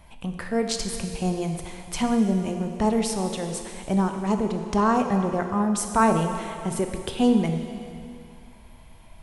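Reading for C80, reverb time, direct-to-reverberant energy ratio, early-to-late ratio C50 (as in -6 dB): 7.0 dB, 2.4 s, 5.0 dB, 6.0 dB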